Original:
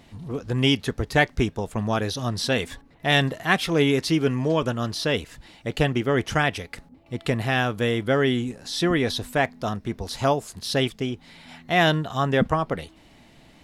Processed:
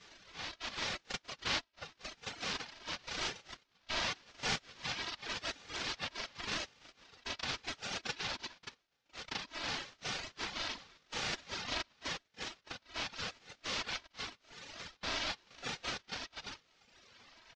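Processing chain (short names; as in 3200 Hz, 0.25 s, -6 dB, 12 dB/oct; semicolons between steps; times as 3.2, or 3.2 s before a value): octaver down 2 oct, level 0 dB; band-pass sweep 1700 Hz -> 3600 Hz, 5.45–6.44; noise vocoder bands 1; wide varispeed 0.777×; LPF 5000 Hz 24 dB/oct; comb 3.1 ms, depth 80%; reverse echo 38 ms -6.5 dB; reverb removal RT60 1.4 s; compressor 3:1, threshold -43 dBFS, peak gain reduction 19.5 dB; ring modulator with a swept carrier 710 Hz, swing 55%, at 0.89 Hz; gain +7 dB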